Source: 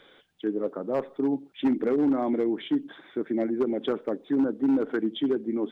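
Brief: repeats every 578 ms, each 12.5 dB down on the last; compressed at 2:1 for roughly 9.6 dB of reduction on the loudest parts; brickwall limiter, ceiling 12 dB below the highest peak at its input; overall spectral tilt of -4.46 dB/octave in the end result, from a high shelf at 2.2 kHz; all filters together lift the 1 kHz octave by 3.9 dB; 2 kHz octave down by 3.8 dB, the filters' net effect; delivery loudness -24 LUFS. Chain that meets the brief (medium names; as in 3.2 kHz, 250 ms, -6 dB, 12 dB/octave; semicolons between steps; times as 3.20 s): peaking EQ 1 kHz +8 dB; peaking EQ 2 kHz -8 dB; treble shelf 2.2 kHz -3.5 dB; compression 2:1, threshold -38 dBFS; peak limiter -34.5 dBFS; feedback delay 578 ms, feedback 24%, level -12.5 dB; trim +19 dB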